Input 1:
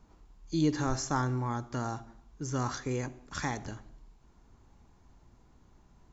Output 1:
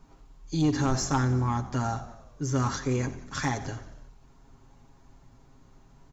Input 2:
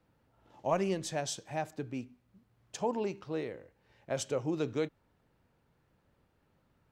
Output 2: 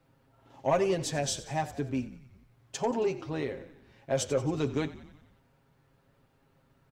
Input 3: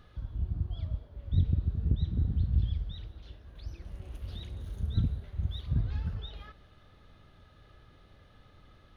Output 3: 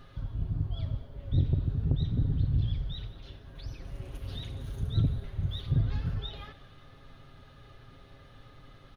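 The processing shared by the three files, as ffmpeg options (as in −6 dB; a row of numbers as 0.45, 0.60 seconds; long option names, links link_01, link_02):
-filter_complex "[0:a]aecho=1:1:7.4:0.66,asoftclip=type=tanh:threshold=-20.5dB,asplit=7[link_01][link_02][link_03][link_04][link_05][link_06][link_07];[link_02]adelay=90,afreqshift=-42,volume=-16dB[link_08];[link_03]adelay=180,afreqshift=-84,volume=-20.3dB[link_09];[link_04]adelay=270,afreqshift=-126,volume=-24.6dB[link_10];[link_05]adelay=360,afreqshift=-168,volume=-28.9dB[link_11];[link_06]adelay=450,afreqshift=-210,volume=-33.2dB[link_12];[link_07]adelay=540,afreqshift=-252,volume=-37.5dB[link_13];[link_01][link_08][link_09][link_10][link_11][link_12][link_13]amix=inputs=7:normalize=0,volume=3.5dB"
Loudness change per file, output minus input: +5.0, +4.0, +1.5 LU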